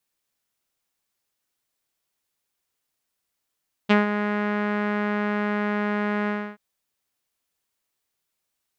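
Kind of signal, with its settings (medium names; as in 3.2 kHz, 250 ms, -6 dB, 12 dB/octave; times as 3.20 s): synth note saw G#3 12 dB/octave, low-pass 1.8 kHz, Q 2.2, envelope 1 oct, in 0.06 s, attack 19 ms, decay 0.15 s, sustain -9.5 dB, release 0.29 s, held 2.39 s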